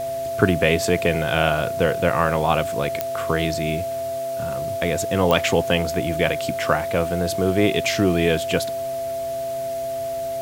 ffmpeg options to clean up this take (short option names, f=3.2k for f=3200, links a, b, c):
-af "adeclick=t=4,bandreject=f=130.5:t=h:w=4,bandreject=f=261:t=h:w=4,bandreject=f=391.5:t=h:w=4,bandreject=f=522:t=h:w=4,bandreject=f=670:w=30,afwtdn=0.0079"